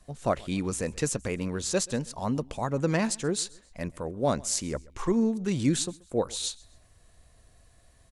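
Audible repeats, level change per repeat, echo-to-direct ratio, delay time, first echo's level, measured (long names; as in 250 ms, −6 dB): 2, −8.5 dB, −23.5 dB, 131 ms, −24.0 dB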